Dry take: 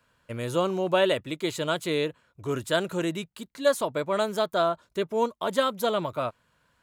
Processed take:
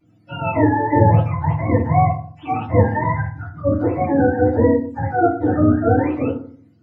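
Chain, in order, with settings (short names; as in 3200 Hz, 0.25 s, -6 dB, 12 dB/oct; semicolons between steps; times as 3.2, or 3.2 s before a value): spectrum mirrored in octaves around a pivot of 570 Hz; FDN reverb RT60 0.49 s, low-frequency decay 1.4×, high-frequency decay 0.35×, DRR -9.5 dB; gain -2 dB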